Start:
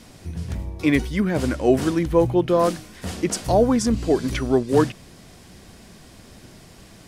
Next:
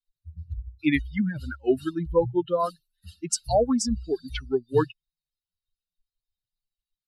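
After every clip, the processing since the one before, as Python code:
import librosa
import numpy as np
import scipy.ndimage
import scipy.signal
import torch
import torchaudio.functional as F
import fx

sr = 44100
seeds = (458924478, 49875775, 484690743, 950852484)

y = fx.bin_expand(x, sr, power=3.0)
y = scipy.signal.sosfilt(scipy.signal.butter(4, 10000.0, 'lowpass', fs=sr, output='sos'), y)
y = fx.high_shelf(y, sr, hz=4300.0, db=5.5)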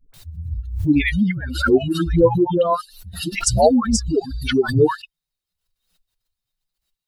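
y = fx.dispersion(x, sr, late='highs', ms=139.0, hz=560.0)
y = fx.pre_swell(y, sr, db_per_s=83.0)
y = y * librosa.db_to_amplitude(6.5)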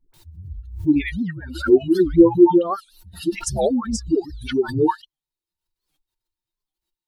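y = fx.small_body(x, sr, hz=(340.0, 910.0), ring_ms=85, db=17)
y = fx.record_warp(y, sr, rpm=78.0, depth_cents=250.0)
y = y * librosa.db_to_amplitude(-7.5)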